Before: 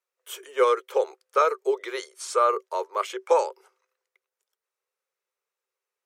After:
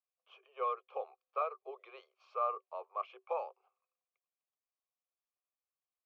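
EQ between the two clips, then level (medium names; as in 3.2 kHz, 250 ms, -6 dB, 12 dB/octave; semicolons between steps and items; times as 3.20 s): vowel filter a; distance through air 99 m; cabinet simulation 500–4900 Hz, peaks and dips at 690 Hz -3 dB, 1.5 kHz -7 dB, 3.7 kHz -3 dB; -1.0 dB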